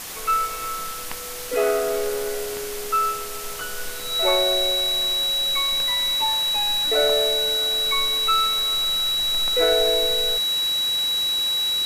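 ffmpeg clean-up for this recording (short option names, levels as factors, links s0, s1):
-af "bandreject=f=3900:w=30,afftdn=nr=30:nf=-31"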